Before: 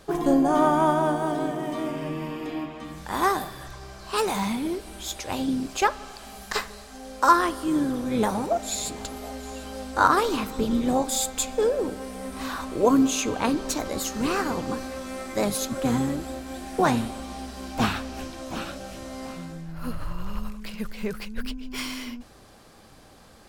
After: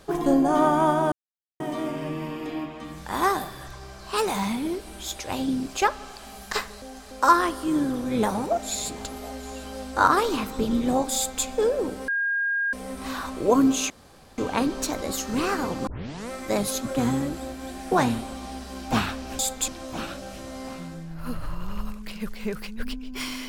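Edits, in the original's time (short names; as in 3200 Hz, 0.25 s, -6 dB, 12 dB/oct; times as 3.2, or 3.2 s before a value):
1.12–1.6 mute
6.82–7.11 reverse
11.16–11.45 copy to 18.26
12.08 add tone 1620 Hz -22 dBFS 0.65 s
13.25 insert room tone 0.48 s
14.74 tape start 0.43 s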